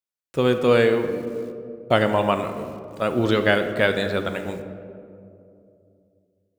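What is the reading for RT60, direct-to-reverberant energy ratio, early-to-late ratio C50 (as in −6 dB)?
2.7 s, 7.0 dB, 8.5 dB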